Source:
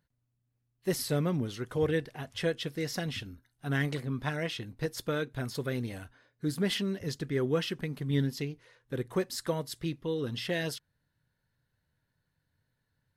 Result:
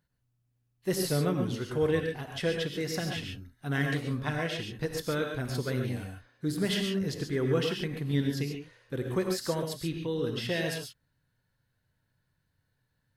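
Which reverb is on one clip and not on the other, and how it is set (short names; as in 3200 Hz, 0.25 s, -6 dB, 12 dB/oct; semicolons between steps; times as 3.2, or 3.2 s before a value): non-linear reverb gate 0.16 s rising, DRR 2.5 dB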